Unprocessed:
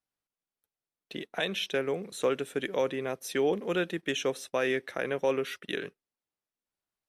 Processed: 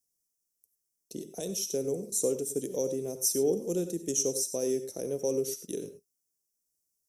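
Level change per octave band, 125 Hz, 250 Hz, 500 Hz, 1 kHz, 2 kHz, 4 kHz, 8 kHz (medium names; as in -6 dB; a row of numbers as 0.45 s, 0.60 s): +0.5 dB, +0.5 dB, -1.0 dB, -14.0 dB, under -20 dB, -4.5 dB, +14.5 dB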